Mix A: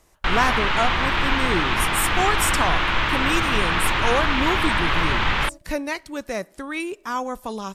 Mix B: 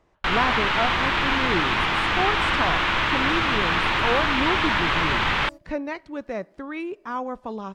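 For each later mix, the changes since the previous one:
speech: add tape spacing loss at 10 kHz 30 dB; master: add bass shelf 61 Hz -10 dB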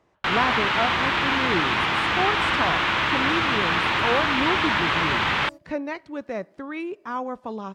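master: add high-pass 81 Hz 12 dB/octave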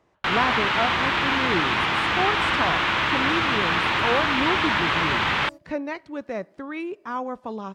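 no change

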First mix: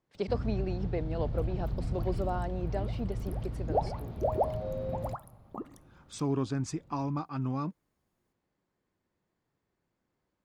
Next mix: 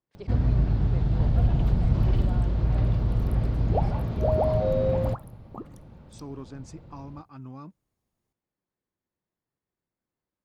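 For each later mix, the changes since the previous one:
speech -9.0 dB; first sound +11.5 dB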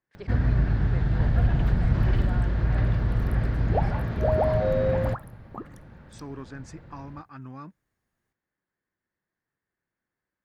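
master: add peaking EQ 1.7 kHz +13 dB 0.7 oct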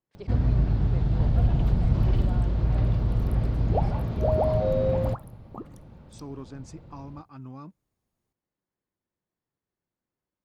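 master: add peaking EQ 1.7 kHz -13 dB 0.7 oct

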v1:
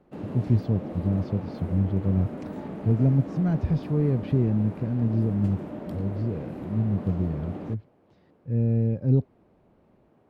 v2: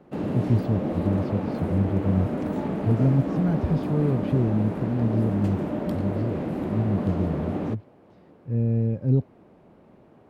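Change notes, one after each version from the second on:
background +8.0 dB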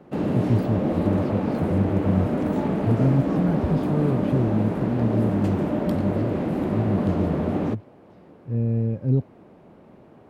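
background +4.0 dB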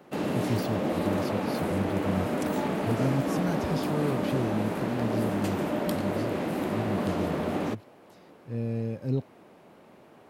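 speech: remove distance through air 140 m; master: add tilt EQ +3 dB/octave

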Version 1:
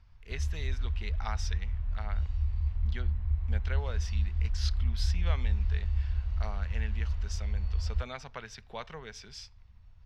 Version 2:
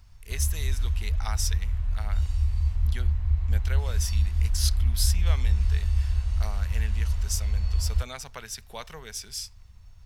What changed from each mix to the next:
background +5.5 dB; master: remove distance through air 210 m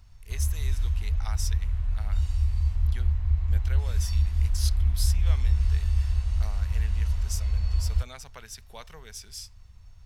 speech -5.5 dB

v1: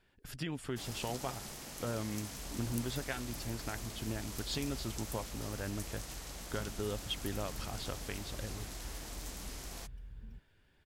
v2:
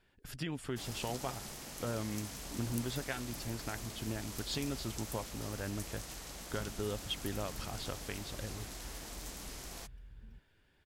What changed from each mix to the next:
second sound -4.0 dB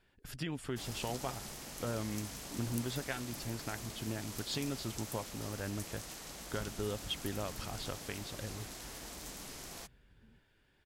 second sound: add band-pass filter 360 Hz, Q 0.7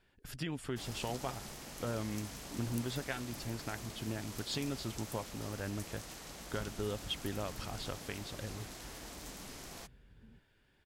first sound: add peaking EQ 12 kHz -3.5 dB 2.1 oct; second sound +4.5 dB

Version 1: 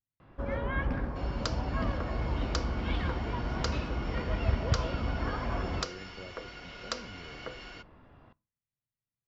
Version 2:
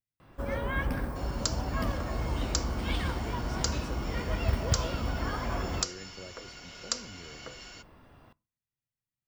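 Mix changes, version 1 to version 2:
second sound -5.0 dB; master: remove distance through air 230 m

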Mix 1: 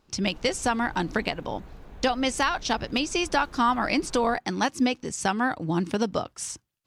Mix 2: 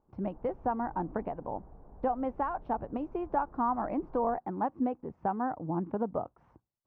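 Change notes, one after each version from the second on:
background: add distance through air 310 m; master: add four-pole ladder low-pass 1.1 kHz, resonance 35%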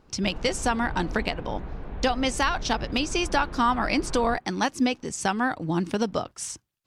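background +9.5 dB; master: remove four-pole ladder low-pass 1.1 kHz, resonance 35%

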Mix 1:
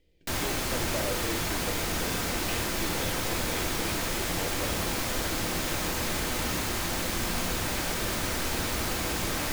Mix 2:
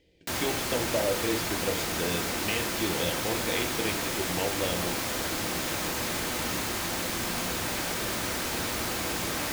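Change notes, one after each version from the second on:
speech +7.0 dB; master: add high-pass 120 Hz 6 dB/octave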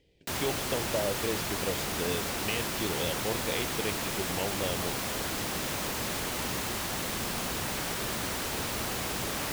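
reverb: off

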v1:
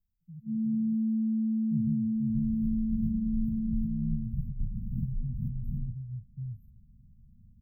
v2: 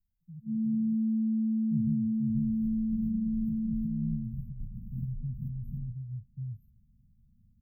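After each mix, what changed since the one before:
second sound: add bass shelf 400 Hz -7.5 dB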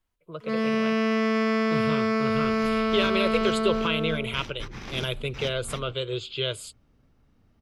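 master: remove brick-wall FIR band-stop 240–13000 Hz

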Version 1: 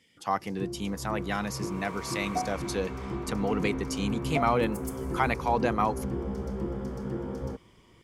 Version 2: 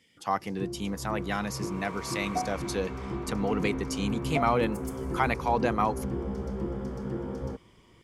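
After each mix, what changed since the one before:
background: add treble shelf 11 kHz -8.5 dB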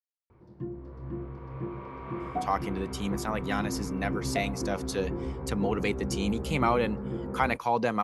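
speech: entry +2.20 s; background: add distance through air 430 m

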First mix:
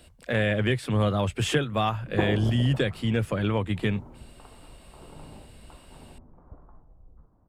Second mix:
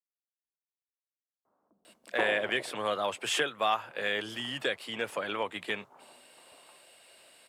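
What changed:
speech: entry +1.85 s; master: add high-pass 590 Hz 12 dB/octave

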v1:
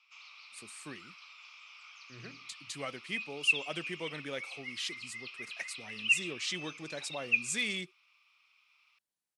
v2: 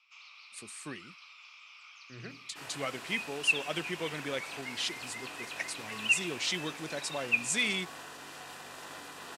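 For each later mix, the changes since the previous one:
speech +3.5 dB; second sound: unmuted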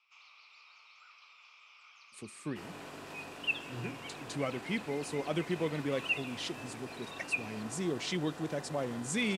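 speech: entry +1.60 s; master: add tilt shelf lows +7 dB, about 820 Hz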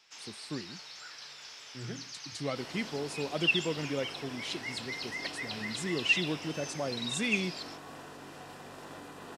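speech: entry -1.95 s; first sound: remove two resonant band-passes 1.7 kHz, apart 1 oct

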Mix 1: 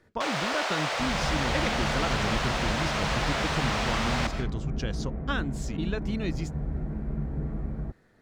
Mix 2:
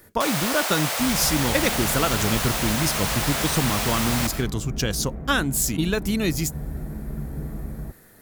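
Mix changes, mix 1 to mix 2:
speech +8.0 dB; master: remove distance through air 140 m

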